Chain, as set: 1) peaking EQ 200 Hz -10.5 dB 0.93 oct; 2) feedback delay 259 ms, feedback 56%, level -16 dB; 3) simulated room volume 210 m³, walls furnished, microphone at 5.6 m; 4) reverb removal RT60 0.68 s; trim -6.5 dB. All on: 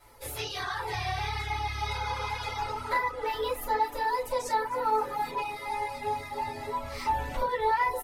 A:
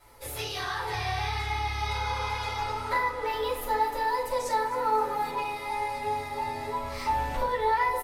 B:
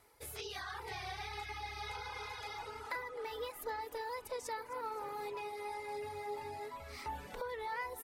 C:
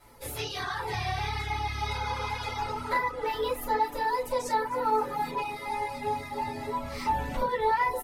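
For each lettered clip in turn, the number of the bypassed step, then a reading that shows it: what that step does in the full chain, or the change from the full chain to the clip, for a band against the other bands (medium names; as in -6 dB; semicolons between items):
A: 4, loudness change +1.5 LU; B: 3, momentary loudness spread change -3 LU; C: 1, 250 Hz band +6.0 dB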